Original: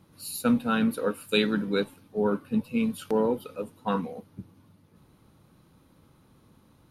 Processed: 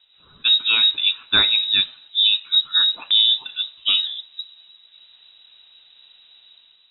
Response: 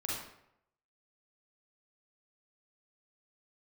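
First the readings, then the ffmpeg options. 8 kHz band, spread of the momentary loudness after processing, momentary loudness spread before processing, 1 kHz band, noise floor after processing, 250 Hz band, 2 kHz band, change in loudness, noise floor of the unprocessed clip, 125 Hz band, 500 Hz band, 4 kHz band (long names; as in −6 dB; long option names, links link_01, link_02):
below −35 dB, 12 LU, 13 LU, −3.5 dB, −55 dBFS, below −15 dB, +9.0 dB, +11.5 dB, −61 dBFS, below −10 dB, below −15 dB, +24.5 dB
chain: -filter_complex "[0:a]lowpass=frequency=3400:width_type=q:width=0.5098,lowpass=frequency=3400:width_type=q:width=0.6013,lowpass=frequency=3400:width_type=q:width=0.9,lowpass=frequency=3400:width_type=q:width=2.563,afreqshift=-4000,asplit=2[link_01][link_02];[1:a]atrim=start_sample=2205,asetrate=70560,aresample=44100[link_03];[link_02][link_03]afir=irnorm=-1:irlink=0,volume=-19dB[link_04];[link_01][link_04]amix=inputs=2:normalize=0,dynaudnorm=framelen=130:gausssize=7:maxgain=8dB"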